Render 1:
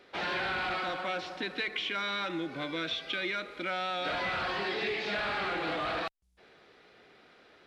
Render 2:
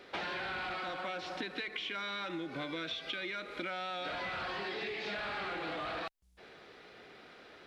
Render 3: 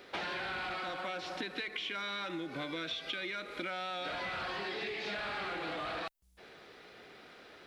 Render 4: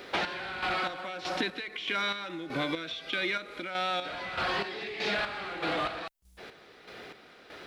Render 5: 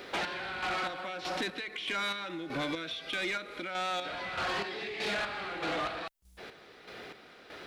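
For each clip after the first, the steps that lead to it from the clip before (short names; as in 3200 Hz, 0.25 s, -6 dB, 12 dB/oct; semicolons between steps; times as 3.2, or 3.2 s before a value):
compressor 10:1, threshold -40 dBFS, peak gain reduction 11 dB; gain +4 dB
high shelf 8900 Hz +8.5 dB
chopper 1.6 Hz, depth 60%, duty 40%; gain +8.5 dB
soft clip -27.5 dBFS, distortion -15 dB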